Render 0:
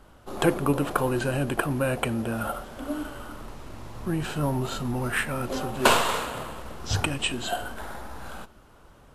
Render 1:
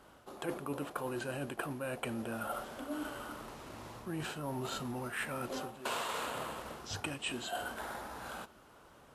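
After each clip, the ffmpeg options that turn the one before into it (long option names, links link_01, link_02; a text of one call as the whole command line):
ffmpeg -i in.wav -af "highpass=frequency=100:poles=1,lowshelf=frequency=200:gain=-6,areverse,acompressor=threshold=-33dB:ratio=6,areverse,volume=-2.5dB" out.wav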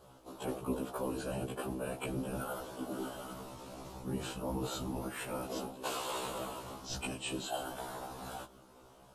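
ffmpeg -i in.wav -af "afftfilt=real='hypot(re,im)*cos(2*PI*random(0))':imag='hypot(re,im)*sin(2*PI*random(1))':win_size=512:overlap=0.75,equalizer=frequency=1800:width=1.4:gain=-10.5,afftfilt=real='re*1.73*eq(mod(b,3),0)':imag='im*1.73*eq(mod(b,3),0)':win_size=2048:overlap=0.75,volume=10.5dB" out.wav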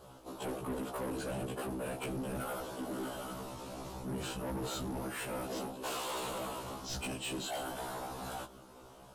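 ffmpeg -i in.wav -af "asoftclip=type=tanh:threshold=-38dB,volume=4dB" out.wav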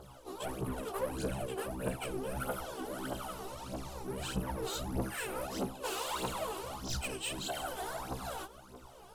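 ffmpeg -i in.wav -af "aphaser=in_gain=1:out_gain=1:delay=2.8:decay=0.7:speed=1.6:type=triangular,volume=-1.5dB" out.wav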